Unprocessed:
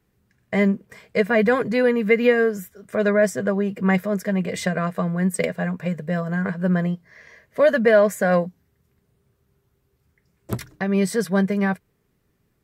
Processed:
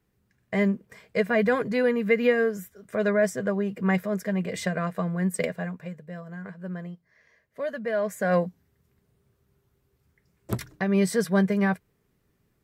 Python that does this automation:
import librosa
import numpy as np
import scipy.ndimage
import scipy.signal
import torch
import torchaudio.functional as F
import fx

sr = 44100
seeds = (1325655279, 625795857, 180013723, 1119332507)

y = fx.gain(x, sr, db=fx.line((5.51, -4.5), (6.03, -14.5), (7.83, -14.5), (8.43, -2.0)))